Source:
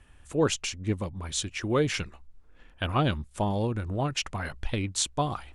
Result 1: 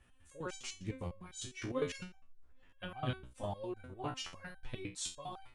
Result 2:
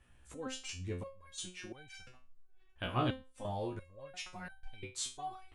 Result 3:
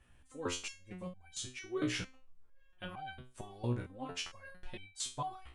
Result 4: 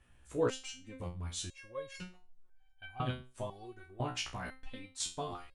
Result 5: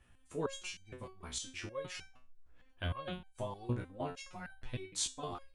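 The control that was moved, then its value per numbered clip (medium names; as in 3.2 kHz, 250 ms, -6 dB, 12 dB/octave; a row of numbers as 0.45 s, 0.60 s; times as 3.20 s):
resonator arpeggio, rate: 9.9 Hz, 2.9 Hz, 4.4 Hz, 2 Hz, 6.5 Hz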